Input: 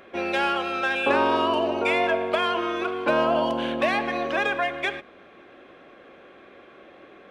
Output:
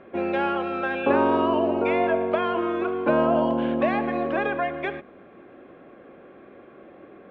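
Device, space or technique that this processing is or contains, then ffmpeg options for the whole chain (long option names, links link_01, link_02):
phone in a pocket: -af "lowpass=3200,equalizer=frequency=180:width_type=o:width=2.4:gain=6,highshelf=frequency=2300:gain=-11"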